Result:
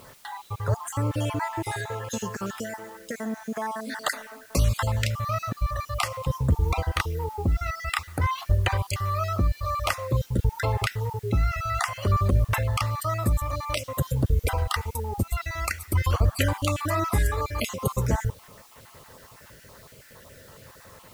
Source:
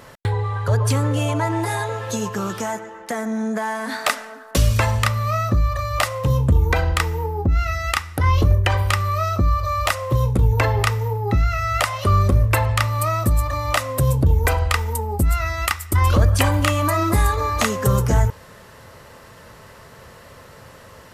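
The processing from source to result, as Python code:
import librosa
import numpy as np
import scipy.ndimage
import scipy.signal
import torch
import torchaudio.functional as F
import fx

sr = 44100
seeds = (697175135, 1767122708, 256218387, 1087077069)

y = fx.spec_dropout(x, sr, seeds[0], share_pct=33)
y = fx.dmg_noise_colour(y, sr, seeds[1], colour='white', level_db=-50.0)
y = F.gain(torch.from_numpy(y), -5.0).numpy()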